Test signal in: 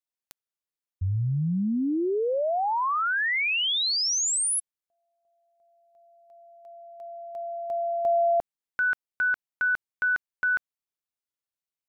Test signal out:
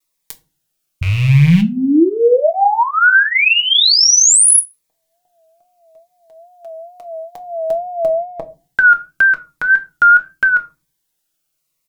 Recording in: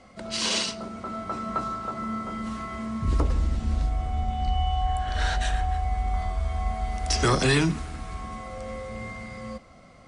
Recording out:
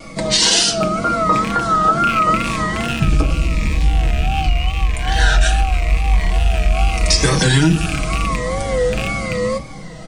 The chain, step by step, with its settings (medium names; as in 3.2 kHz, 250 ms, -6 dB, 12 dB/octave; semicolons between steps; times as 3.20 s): rattle on loud lows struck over -33 dBFS, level -25 dBFS; compression 6:1, threshold -29 dBFS; treble shelf 6.4 kHz +5 dB; simulated room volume 140 m³, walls furnished, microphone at 0.61 m; dynamic bell 1.5 kHz, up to +8 dB, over -47 dBFS, Q 5.4; wow and flutter 97 cents; comb 6.3 ms, depth 58%; loudness maximiser +17.5 dB; Shepard-style phaser falling 0.85 Hz; trim -1 dB